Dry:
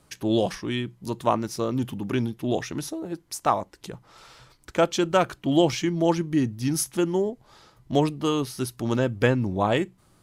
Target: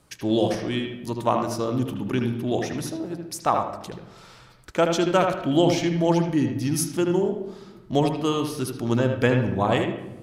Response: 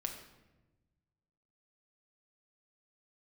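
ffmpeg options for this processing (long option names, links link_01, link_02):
-filter_complex "[0:a]asplit=2[link_01][link_02];[1:a]atrim=start_sample=2205,lowpass=4000,adelay=77[link_03];[link_02][link_03]afir=irnorm=-1:irlink=0,volume=-4dB[link_04];[link_01][link_04]amix=inputs=2:normalize=0"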